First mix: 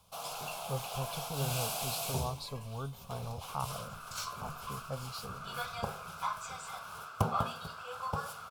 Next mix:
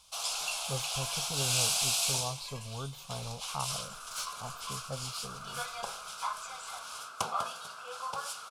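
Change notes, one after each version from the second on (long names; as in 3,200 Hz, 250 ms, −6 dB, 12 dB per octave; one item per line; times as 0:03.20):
first sound: add meter weighting curve ITU-R 468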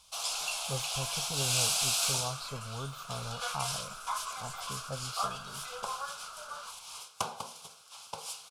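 second sound: entry −2.15 s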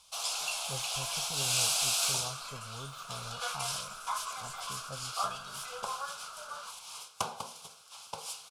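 speech −5.5 dB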